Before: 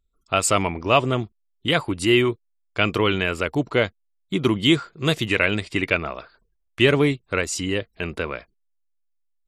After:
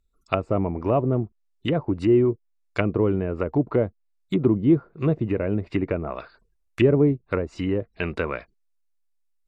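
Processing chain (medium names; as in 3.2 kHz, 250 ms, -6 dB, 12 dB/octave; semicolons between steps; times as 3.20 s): low-pass that closes with the level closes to 540 Hz, closed at -19 dBFS; band-stop 3.2 kHz, Q 8.6; trim +1.5 dB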